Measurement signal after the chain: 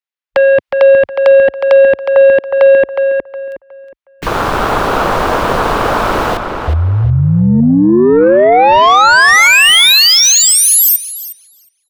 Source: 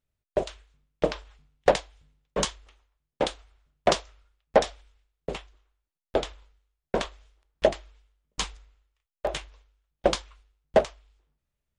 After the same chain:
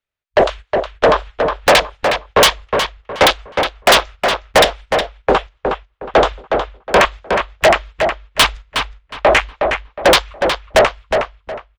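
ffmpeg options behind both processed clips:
-filter_complex "[0:a]afwtdn=0.0141,agate=range=-11dB:threshold=-46dB:ratio=16:detection=peak,acrossover=split=370 4000:gain=0.251 1 0.224[a][b][c];[a][b][c]amix=inputs=3:normalize=0,acrossover=split=710|1100[d][e][f];[f]acontrast=46[g];[d][e][g]amix=inputs=3:normalize=0,asoftclip=type=tanh:threshold=-22dB,apsyclip=34.5dB,asplit=2[h][i];[i]adelay=364,lowpass=f=3.1k:p=1,volume=-5dB,asplit=2[j][k];[k]adelay=364,lowpass=f=3.1k:p=1,volume=0.29,asplit=2[l][m];[m]adelay=364,lowpass=f=3.1k:p=1,volume=0.29,asplit=2[n][o];[o]adelay=364,lowpass=f=3.1k:p=1,volume=0.29[p];[j][l][n][p]amix=inputs=4:normalize=0[q];[h][q]amix=inputs=2:normalize=0,volume=-6dB"

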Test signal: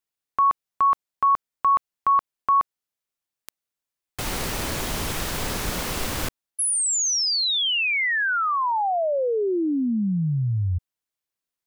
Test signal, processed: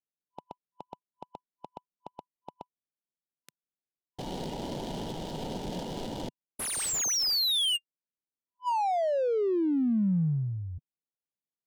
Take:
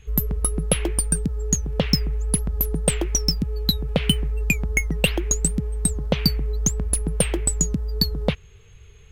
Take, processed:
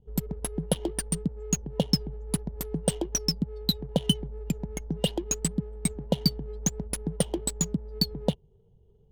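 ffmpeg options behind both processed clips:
-af "lowshelf=f=120:t=q:w=1.5:g=-8.5,afftfilt=real='re*(1-between(b*sr/4096,1000,2800))':imag='im*(1-between(b*sr/4096,1000,2800))':win_size=4096:overlap=0.75,adynamicsmooth=sensitivity=7:basefreq=660,volume=-4.5dB"

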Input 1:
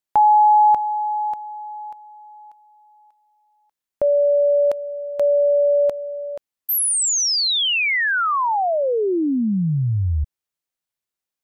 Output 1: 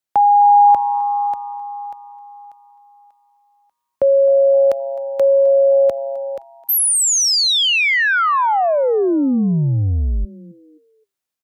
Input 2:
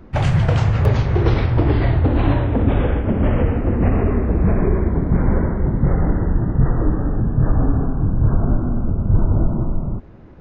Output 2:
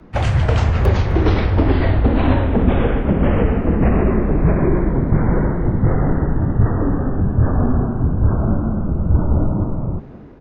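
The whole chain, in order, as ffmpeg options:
-filter_complex "[0:a]highpass=f=61:p=1,dynaudnorm=f=290:g=3:m=3dB,afreqshift=-26,asplit=4[a][b][c][d];[b]adelay=260,afreqshift=130,volume=-20.5dB[e];[c]adelay=520,afreqshift=260,volume=-30.1dB[f];[d]adelay=780,afreqshift=390,volume=-39.8dB[g];[a][e][f][g]amix=inputs=4:normalize=0,volume=1dB"

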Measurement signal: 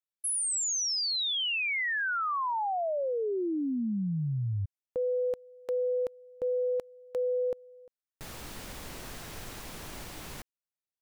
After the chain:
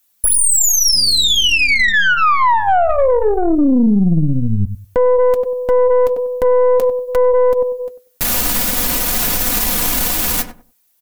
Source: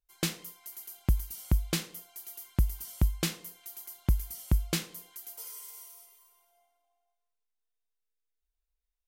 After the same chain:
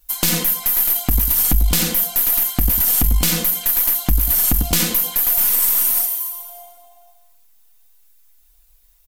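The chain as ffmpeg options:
-filter_complex "[0:a]asplit=2[a][b];[b]adelay=96,lowpass=f=1.1k:p=1,volume=-13dB,asplit=2[c][d];[d]adelay=96,lowpass=f=1.1k:p=1,volume=0.24,asplit=2[e][f];[f]adelay=96,lowpass=f=1.1k:p=1,volume=0.24[g];[a][c][e][g]amix=inputs=4:normalize=0,flanger=delay=3.3:depth=7.1:regen=-59:speed=0.53:shape=triangular,highshelf=f=7.2k:g=11.5,acompressor=threshold=-45dB:ratio=2:attack=53:release=127:detection=peak,aeval=exprs='(tanh(63.1*val(0)+0.65)-tanh(0.65))/63.1':c=same,equalizer=f=13k:w=5.1:g=7.5,bandreject=f=450:w=13,aecho=1:1:4.1:0.61,alimiter=level_in=36dB:limit=-1dB:release=50:level=0:latency=1,volume=-4.5dB"

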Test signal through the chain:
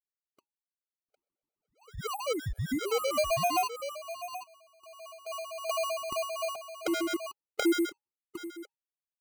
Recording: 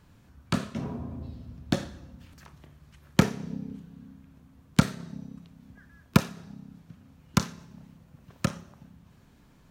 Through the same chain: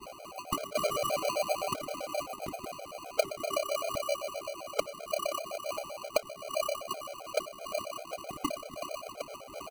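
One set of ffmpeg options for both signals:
-filter_complex "[0:a]equalizer=f=125:t=o:w=1:g=-3,equalizer=f=250:t=o:w=1:g=9,equalizer=f=500:t=o:w=1:g=12,equalizer=f=2k:t=o:w=1:g=6,acompressor=threshold=-33dB:ratio=16,agate=range=-33dB:threshold=-59dB:ratio=3:detection=peak,lowshelf=f=390:g=6.5,lowpass=f=2.2k:t=q:w=0.5098,lowpass=f=2.2k:t=q:w=0.6013,lowpass=f=2.2k:t=q:w=0.9,lowpass=f=2.2k:t=q:w=2.563,afreqshift=-2600,asplit=2[a][b];[b]adelay=758,volume=-7dB,highshelf=f=4k:g=-17.1[c];[a][c]amix=inputs=2:normalize=0,aphaser=in_gain=1:out_gain=1:delay=2.2:decay=0.34:speed=0.52:type=sinusoidal,acrusher=samples=25:mix=1:aa=0.000001,afftfilt=real='re*gt(sin(2*PI*7.7*pts/sr)*(1-2*mod(floor(b*sr/1024/420),2)),0)':imag='im*gt(sin(2*PI*7.7*pts/sr)*(1-2*mod(floor(b*sr/1024/420),2)),0)':win_size=1024:overlap=0.75,volume=4.5dB"

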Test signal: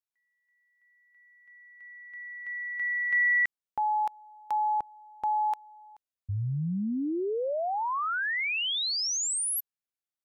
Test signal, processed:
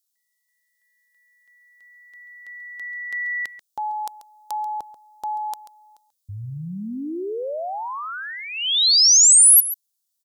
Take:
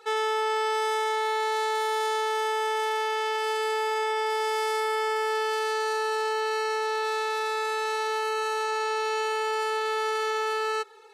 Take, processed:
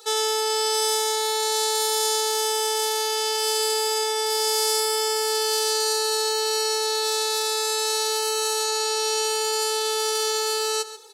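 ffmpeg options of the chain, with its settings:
-af "equalizer=f=500:t=o:w=2.7:g=6,aexciter=amount=11.8:drive=2.4:freq=3.4k,aecho=1:1:137:0.188,volume=-4dB"

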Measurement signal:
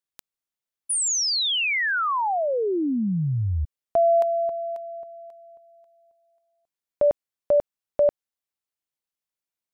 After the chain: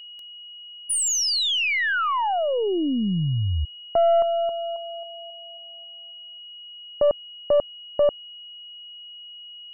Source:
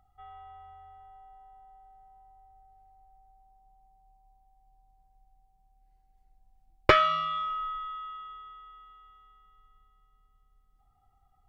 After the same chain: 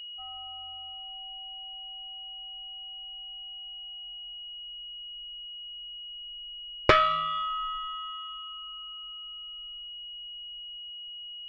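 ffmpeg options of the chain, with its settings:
-af "afftdn=nr=30:nf=-47,aeval=exprs='(tanh(2.51*val(0)+0.4)-tanh(0.4))/2.51':c=same,aeval=exprs='val(0)+0.00891*sin(2*PI*2900*n/s)':c=same,volume=2dB"

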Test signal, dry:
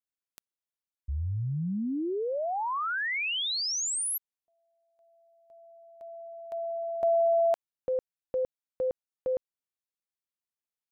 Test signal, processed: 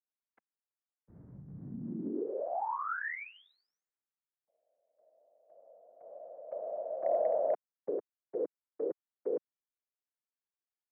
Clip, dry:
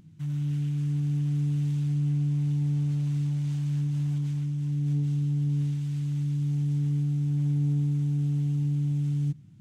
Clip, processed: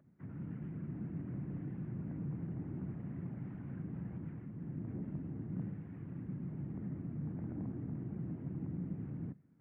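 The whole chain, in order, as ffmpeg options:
-af "afftfilt=real='hypot(re,im)*cos(2*PI*random(0))':imag='hypot(re,im)*sin(2*PI*random(1))':win_size=512:overlap=0.75,volume=23dB,asoftclip=hard,volume=-23dB,highpass=f=250:t=q:w=0.5412,highpass=f=250:t=q:w=1.307,lowpass=f=2k:t=q:w=0.5176,lowpass=f=2k:t=q:w=0.7071,lowpass=f=2k:t=q:w=1.932,afreqshift=-64,volume=1dB"

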